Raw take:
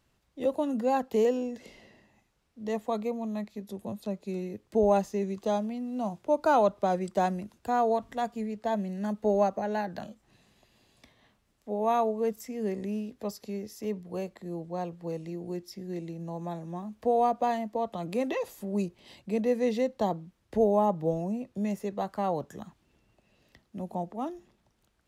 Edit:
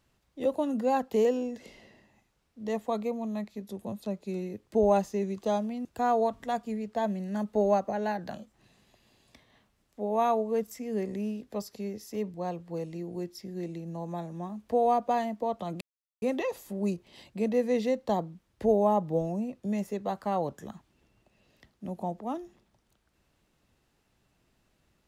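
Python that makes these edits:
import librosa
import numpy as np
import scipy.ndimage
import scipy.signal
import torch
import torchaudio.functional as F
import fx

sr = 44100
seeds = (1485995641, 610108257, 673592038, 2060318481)

y = fx.edit(x, sr, fx.cut(start_s=5.85, length_s=1.69),
    fx.cut(start_s=14.03, length_s=0.64),
    fx.insert_silence(at_s=18.14, length_s=0.41), tone=tone)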